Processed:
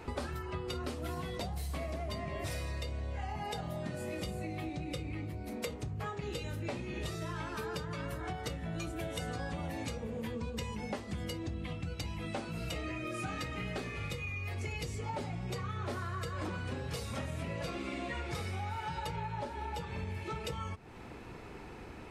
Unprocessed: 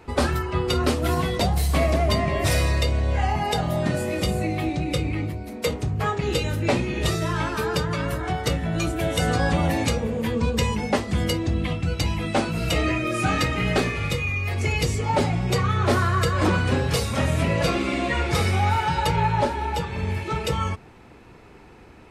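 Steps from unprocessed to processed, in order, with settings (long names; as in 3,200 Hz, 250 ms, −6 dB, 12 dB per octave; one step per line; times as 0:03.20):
downward compressor, threshold −37 dBFS, peak gain reduction 19 dB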